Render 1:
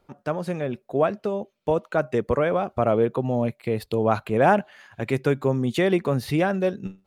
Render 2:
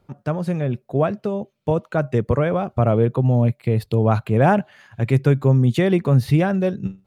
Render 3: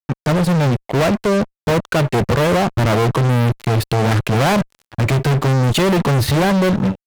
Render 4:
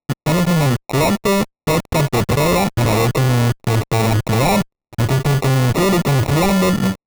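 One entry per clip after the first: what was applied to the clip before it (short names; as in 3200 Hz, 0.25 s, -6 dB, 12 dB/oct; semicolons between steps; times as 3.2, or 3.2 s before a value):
bell 120 Hz +12.5 dB 1.4 oct
fuzz box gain 32 dB, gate -40 dBFS
sample-and-hold 28×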